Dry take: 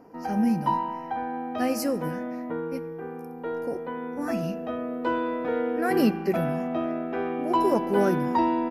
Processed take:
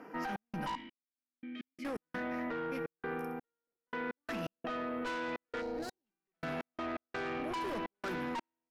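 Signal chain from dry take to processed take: HPF 170 Hz 24 dB/oct; band shelf 2000 Hz +10 dB; tube stage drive 27 dB, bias 0.45; 0.75–1.85 vowel filter i; limiter -27.5 dBFS, peak gain reduction 3 dB; reverb RT60 0.60 s, pre-delay 6 ms, DRR 16.5 dB; step gate "xx.xx...x.x.xx" 84 bpm -60 dB; in parallel at +3 dB: negative-ratio compressor -38 dBFS, ratio -1; 5.61–6.06 on the sum: spectral gain 970–3800 Hz -12 dB; gain -9 dB

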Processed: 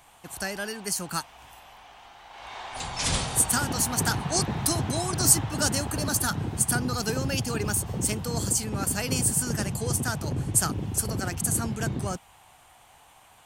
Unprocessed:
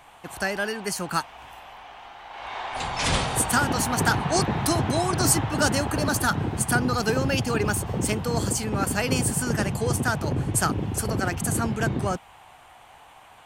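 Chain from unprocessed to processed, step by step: tone controls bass +4 dB, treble +10 dB; gain -6.5 dB

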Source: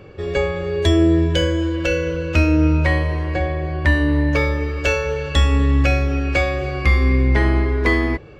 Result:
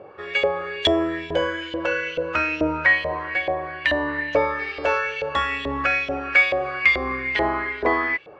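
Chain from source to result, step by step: LFO band-pass saw up 2.3 Hz 610–3300 Hz; 4.58–4.98 buzz 400 Hz, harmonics 13, -51 dBFS -4 dB/oct; gain +8.5 dB

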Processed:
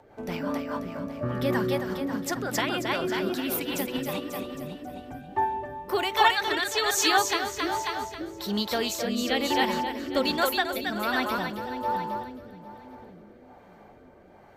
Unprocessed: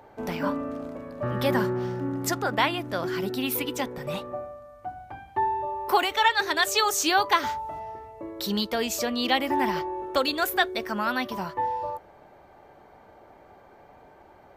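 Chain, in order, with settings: split-band echo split 410 Hz, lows 0.571 s, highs 0.27 s, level -3 dB; rotary speaker horn 5 Hz, later 1.2 Hz, at 4.57; ending taper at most 250 dB/s

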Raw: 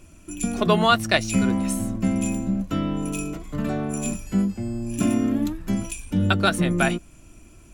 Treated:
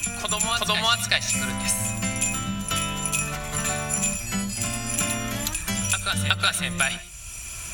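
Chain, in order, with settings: HPF 48 Hz; passive tone stack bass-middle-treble 10-0-10; in parallel at -2 dB: compressor, threshold -33 dBFS, peak gain reduction 13 dB; on the sum: reverse echo 0.371 s -7.5 dB; on a send at -17 dB: reverb, pre-delay 50 ms; on the sum: three-band squash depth 70%; gain +5.5 dB

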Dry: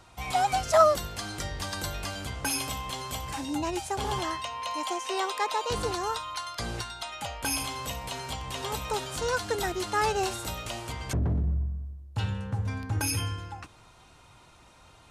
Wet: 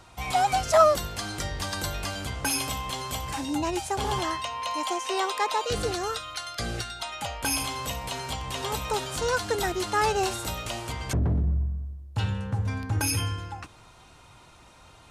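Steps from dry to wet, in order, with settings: in parallel at -8.5 dB: soft clip -21 dBFS, distortion -12 dB; 5.64–7 on the sum: Butterworth band-stop 960 Hz, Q 3.3

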